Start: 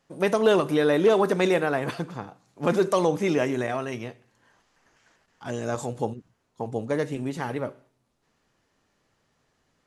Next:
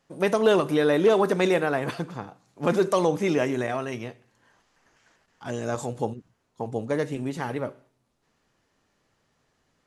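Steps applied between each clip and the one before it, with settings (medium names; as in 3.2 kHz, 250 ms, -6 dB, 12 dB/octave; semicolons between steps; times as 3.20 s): no audible change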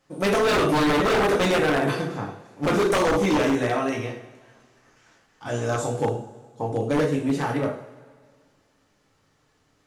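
two-slope reverb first 0.46 s, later 1.9 s, from -18 dB, DRR -1.5 dB; wavefolder -16 dBFS; trim +1 dB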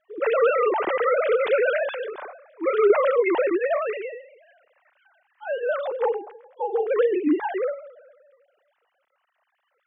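formants replaced by sine waves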